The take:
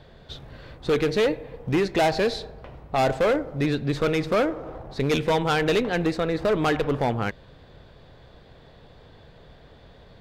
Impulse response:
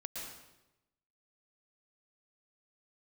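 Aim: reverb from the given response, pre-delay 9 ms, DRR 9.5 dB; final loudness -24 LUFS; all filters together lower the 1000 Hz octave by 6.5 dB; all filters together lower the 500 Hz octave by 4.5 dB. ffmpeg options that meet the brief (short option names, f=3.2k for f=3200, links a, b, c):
-filter_complex "[0:a]equalizer=f=500:t=o:g=-3.5,equalizer=f=1k:t=o:g=-8,asplit=2[a][b];[1:a]atrim=start_sample=2205,adelay=9[c];[b][c]afir=irnorm=-1:irlink=0,volume=-9dB[d];[a][d]amix=inputs=2:normalize=0,volume=3dB"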